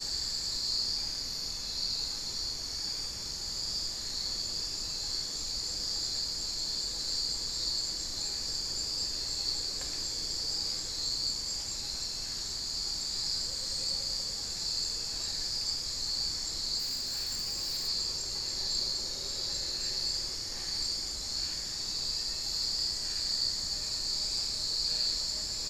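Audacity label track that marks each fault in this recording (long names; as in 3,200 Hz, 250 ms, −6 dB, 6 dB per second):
16.780000	17.890000	clipping −30.5 dBFS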